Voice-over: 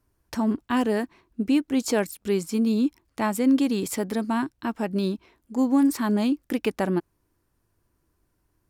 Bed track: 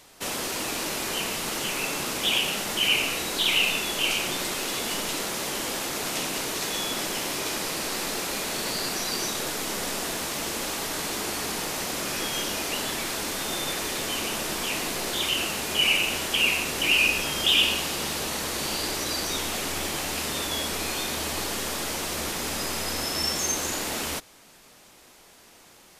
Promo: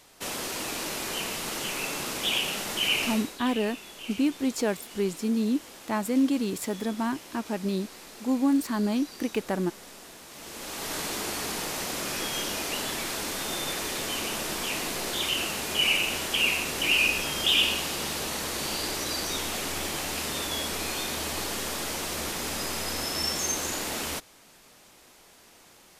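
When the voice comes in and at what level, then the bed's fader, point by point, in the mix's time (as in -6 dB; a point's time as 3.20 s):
2.70 s, -3.5 dB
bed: 3.11 s -3 dB
3.39 s -16.5 dB
10.25 s -16.5 dB
10.92 s -2 dB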